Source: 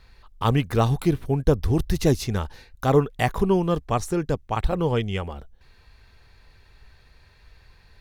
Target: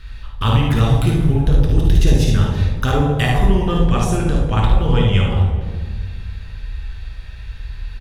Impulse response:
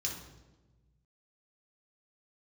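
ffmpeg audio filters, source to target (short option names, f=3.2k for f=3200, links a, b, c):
-filter_complex "[0:a]lowshelf=f=84:g=10.5,acompressor=threshold=-26dB:ratio=3,aecho=1:1:55|73:0.501|0.473,asplit=2[a][b];[1:a]atrim=start_sample=2205,asetrate=23373,aresample=44100[c];[b][c]afir=irnorm=-1:irlink=0,volume=-1.5dB[d];[a][d]amix=inputs=2:normalize=0,volume=3dB"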